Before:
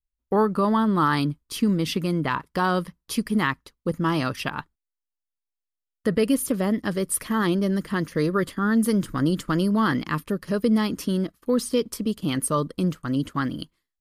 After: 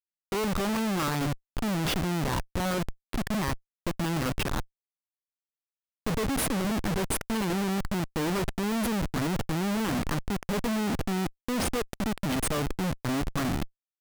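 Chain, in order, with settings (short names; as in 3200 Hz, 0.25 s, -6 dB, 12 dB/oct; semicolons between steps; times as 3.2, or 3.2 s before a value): limiter -17 dBFS, peak gain reduction 6.5 dB; low-pass opened by the level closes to 650 Hz, open at -23 dBFS; Schmitt trigger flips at -30 dBFS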